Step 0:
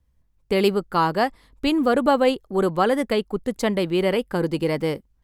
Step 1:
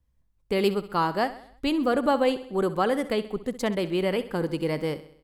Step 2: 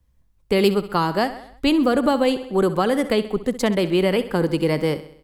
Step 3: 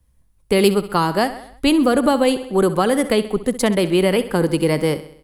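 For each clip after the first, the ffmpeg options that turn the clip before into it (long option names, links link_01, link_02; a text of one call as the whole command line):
ffmpeg -i in.wav -af "aecho=1:1:65|130|195|260|325:0.178|0.0925|0.0481|0.025|0.013,volume=-4.5dB" out.wav
ffmpeg -i in.wav -filter_complex "[0:a]acrossover=split=310|3000[link_01][link_02][link_03];[link_02]acompressor=threshold=-25dB:ratio=6[link_04];[link_01][link_04][link_03]amix=inputs=3:normalize=0,volume=7.5dB" out.wav
ffmpeg -i in.wav -af "equalizer=frequency=10000:width_type=o:width=0.36:gain=12,volume=2.5dB" out.wav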